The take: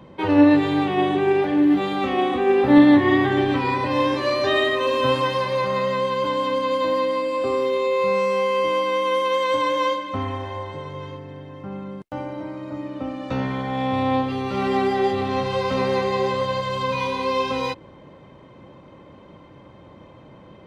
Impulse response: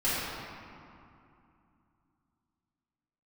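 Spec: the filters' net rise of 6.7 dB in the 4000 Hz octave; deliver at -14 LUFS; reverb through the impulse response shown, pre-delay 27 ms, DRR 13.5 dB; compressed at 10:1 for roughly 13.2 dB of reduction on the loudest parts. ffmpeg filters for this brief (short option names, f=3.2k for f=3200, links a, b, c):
-filter_complex "[0:a]equalizer=f=4k:t=o:g=8.5,acompressor=threshold=-22dB:ratio=10,asplit=2[a][b];[1:a]atrim=start_sample=2205,adelay=27[c];[b][c]afir=irnorm=-1:irlink=0,volume=-25dB[d];[a][d]amix=inputs=2:normalize=0,volume=11.5dB"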